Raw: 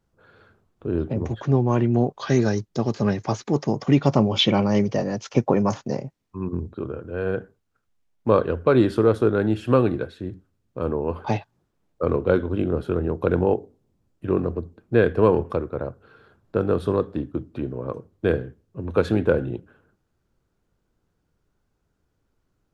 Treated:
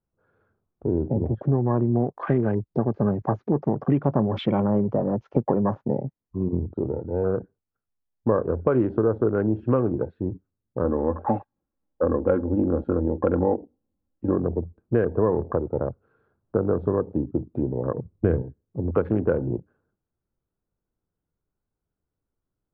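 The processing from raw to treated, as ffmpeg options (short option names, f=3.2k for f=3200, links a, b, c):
-filter_complex "[0:a]asettb=1/sr,asplit=3[a][b][c];[a]atrim=end=10.844[d];[b]atrim=start=10.84:end=14.36,asetpts=PTS-STARTPTS,afade=t=in:d=0.004:c=qsin,afade=t=out:st=3.516:d=0.004:c=qsin,aecho=1:1:3.7:0.65,atrim=end_sample=155232[e];[c]atrim=start=14.356[f];[d][e]acrossfade=d=0.004:c1=hsin:c2=qsin[g];[g][f]acrossfade=d=0.004:c1=qsin:c2=hsin,asettb=1/sr,asplit=3[h][i][j];[h]atrim=end=17.984[k];[i]atrim=start=17.98:end=18.42,asetpts=PTS-STARTPTS,afade=t=in:d=0.004:c=qsin,afade=t=out:st=0.436:d=0.004:c=qsin,lowshelf=f=210:g=10.5[l];[j]atrim=start=18.416[m];[k][l]acrossfade=d=0.004:c1=hsin:c2=qsin[n];[n][m]acrossfade=d=0.004:c1=qsin:c2=hsin,afwtdn=0.0251,acompressor=threshold=-24dB:ratio=3,lowpass=1.4k,volume=4.5dB"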